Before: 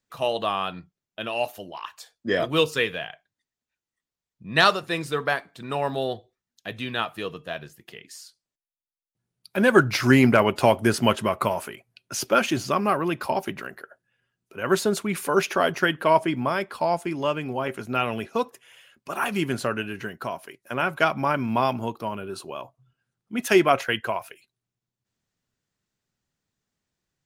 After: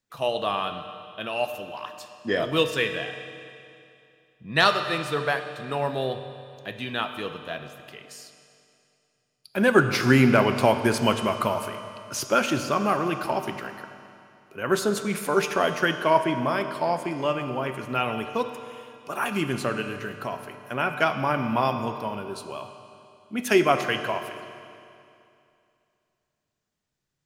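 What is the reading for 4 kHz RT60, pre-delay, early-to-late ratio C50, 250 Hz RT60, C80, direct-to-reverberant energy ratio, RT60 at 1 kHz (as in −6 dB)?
2.5 s, 7 ms, 8.0 dB, 2.6 s, 8.5 dB, 7.0 dB, 2.6 s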